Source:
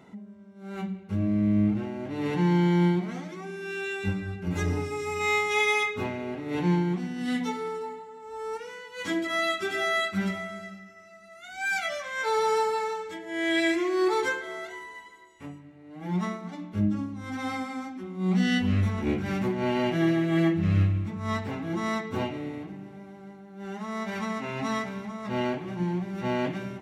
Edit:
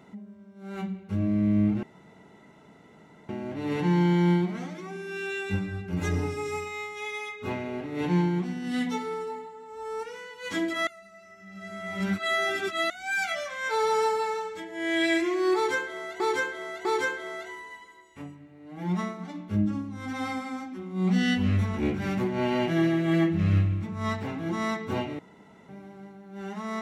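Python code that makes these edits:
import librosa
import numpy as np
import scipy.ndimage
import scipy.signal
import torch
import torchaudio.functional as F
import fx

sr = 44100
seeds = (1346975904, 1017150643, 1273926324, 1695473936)

y = fx.edit(x, sr, fx.insert_room_tone(at_s=1.83, length_s=1.46),
    fx.fade_down_up(start_s=5.1, length_s=0.95, db=-11.0, fade_s=0.14),
    fx.reverse_span(start_s=9.41, length_s=2.03),
    fx.repeat(start_s=14.09, length_s=0.65, count=3),
    fx.room_tone_fill(start_s=22.43, length_s=0.5), tone=tone)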